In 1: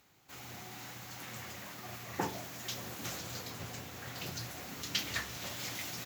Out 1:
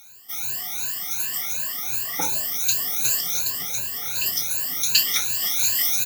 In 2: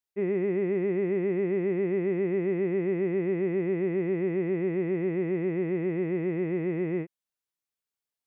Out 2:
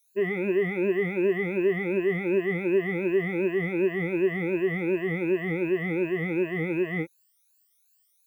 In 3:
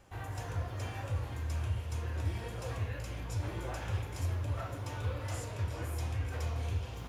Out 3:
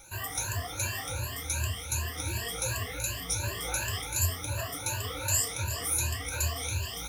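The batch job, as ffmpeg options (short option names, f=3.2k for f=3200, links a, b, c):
-af "afftfilt=real='re*pow(10,23/40*sin(2*PI*(1.4*log(max(b,1)*sr/1024/100)/log(2)-(2.7)*(pts-256)/sr)))':imag='im*pow(10,23/40*sin(2*PI*(1.4*log(max(b,1)*sr/1024/100)/log(2)-(2.7)*(pts-256)/sr)))':win_size=1024:overlap=0.75,crystalizer=i=9:c=0,volume=-4.5dB"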